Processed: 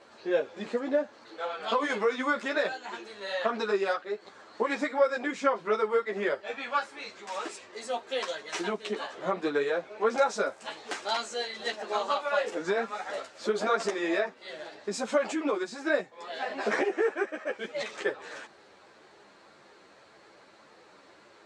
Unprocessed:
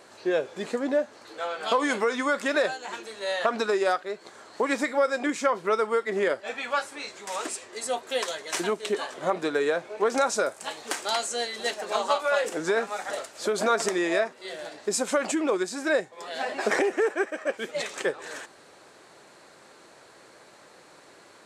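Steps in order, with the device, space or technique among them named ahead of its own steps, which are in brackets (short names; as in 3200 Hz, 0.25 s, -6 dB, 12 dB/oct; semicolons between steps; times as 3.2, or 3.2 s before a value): string-machine ensemble chorus (ensemble effect; LPF 5100 Hz 12 dB/oct)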